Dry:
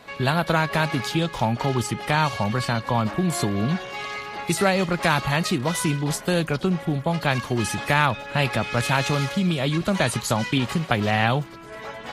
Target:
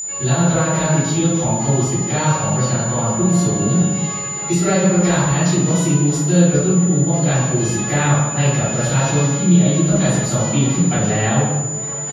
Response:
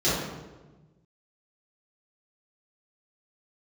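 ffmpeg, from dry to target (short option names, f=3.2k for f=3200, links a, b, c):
-filter_complex "[0:a]asplit=2[a][b];[b]adelay=150,highpass=300,lowpass=3.4k,asoftclip=type=hard:threshold=-13.5dB,volume=-12dB[c];[a][c]amix=inputs=2:normalize=0[d];[1:a]atrim=start_sample=2205[e];[d][e]afir=irnorm=-1:irlink=0,aeval=exprs='val(0)+0.355*sin(2*PI*7000*n/s)':c=same,volume=-14.5dB"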